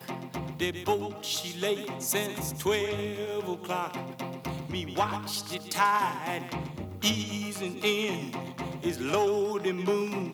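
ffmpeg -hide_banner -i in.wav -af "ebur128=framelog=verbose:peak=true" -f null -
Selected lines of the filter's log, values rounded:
Integrated loudness:
  I:         -30.6 LUFS
  Threshold: -40.6 LUFS
Loudness range:
  LRA:         2.5 LU
  Threshold: -50.7 LUFS
  LRA low:   -32.0 LUFS
  LRA high:  -29.6 LUFS
True peak:
  Peak:      -10.3 dBFS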